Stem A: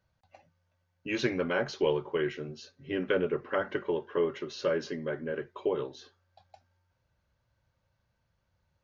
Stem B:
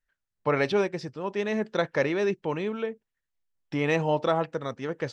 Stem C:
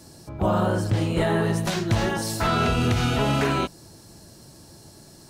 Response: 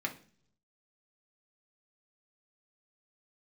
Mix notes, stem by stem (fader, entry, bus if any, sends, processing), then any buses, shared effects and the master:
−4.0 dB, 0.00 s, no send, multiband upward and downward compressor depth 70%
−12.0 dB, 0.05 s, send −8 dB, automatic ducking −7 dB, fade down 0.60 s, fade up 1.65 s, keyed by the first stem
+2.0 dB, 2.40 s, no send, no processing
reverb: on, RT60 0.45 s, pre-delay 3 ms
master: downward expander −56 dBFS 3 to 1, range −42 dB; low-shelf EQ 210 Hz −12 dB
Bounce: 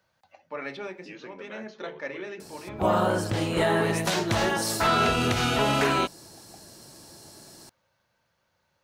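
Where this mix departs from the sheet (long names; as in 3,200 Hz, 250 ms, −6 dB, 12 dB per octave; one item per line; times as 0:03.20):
stem A −4.0 dB → −12.0 dB
stem B: send −8 dB → −1.5 dB
master: missing downward expander −56 dBFS 3 to 1, range −42 dB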